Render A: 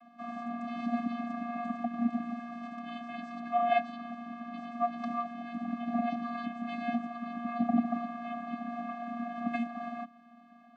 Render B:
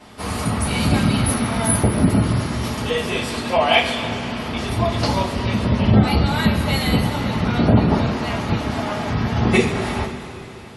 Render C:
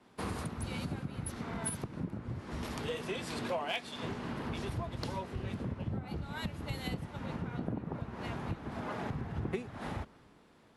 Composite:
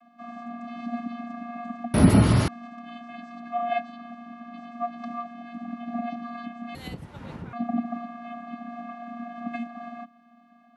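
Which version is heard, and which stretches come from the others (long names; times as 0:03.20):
A
0:01.94–0:02.48: punch in from B
0:06.75–0:07.53: punch in from C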